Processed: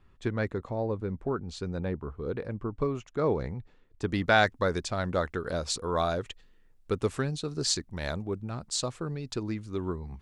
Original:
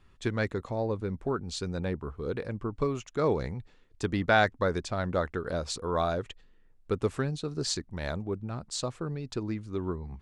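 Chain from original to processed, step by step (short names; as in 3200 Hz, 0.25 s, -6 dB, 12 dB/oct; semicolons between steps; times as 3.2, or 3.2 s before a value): high shelf 2800 Hz -9 dB, from 4.09 s +5 dB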